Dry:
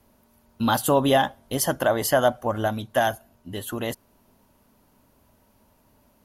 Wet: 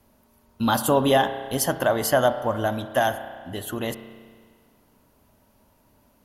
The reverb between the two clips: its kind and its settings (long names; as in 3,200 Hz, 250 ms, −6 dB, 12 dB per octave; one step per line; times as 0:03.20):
spring reverb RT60 1.8 s, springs 31 ms, chirp 40 ms, DRR 10 dB